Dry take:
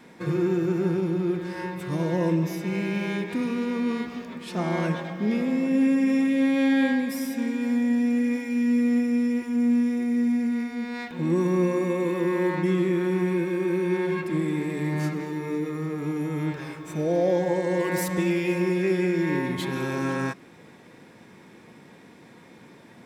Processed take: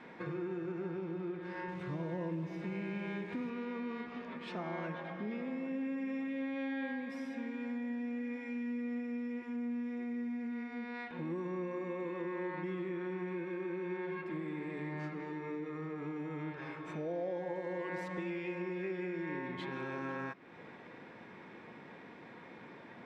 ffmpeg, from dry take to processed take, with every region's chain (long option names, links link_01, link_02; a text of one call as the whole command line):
ffmpeg -i in.wav -filter_complex "[0:a]asettb=1/sr,asplit=3[link_01][link_02][link_03];[link_01]atrim=end=1.684[link_04];[link_02]atrim=start=1.68:end=3.5,asetpts=PTS-STARTPTS,afade=type=in:duration=0.004:curve=qsin,afade=type=out:start_time=1.816:duration=0.004:curve=qsin,lowshelf=frequency=190:gain=10,acrusher=bits=8:dc=4:mix=0:aa=0.000001[link_05];[link_03]atrim=start=3.496[link_06];[link_04][link_05]acrossfade=duration=0.004:curve1=hsin:curve2=qsin[link_07];[link_07][link_06]acrossfade=duration=0.004:curve1=qsin:curve2=hsin,lowpass=2500,lowshelf=frequency=340:gain=-9,acompressor=threshold=-44dB:ratio=2.5,volume=1.5dB" out.wav